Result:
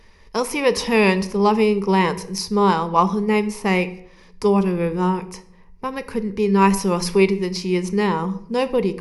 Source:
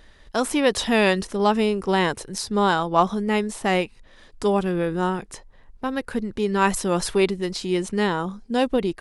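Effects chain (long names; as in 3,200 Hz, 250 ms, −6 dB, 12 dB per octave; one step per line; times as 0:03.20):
EQ curve with evenly spaced ripples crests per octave 0.83, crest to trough 11 dB
on a send: convolution reverb RT60 0.65 s, pre-delay 3 ms, DRR 11.5 dB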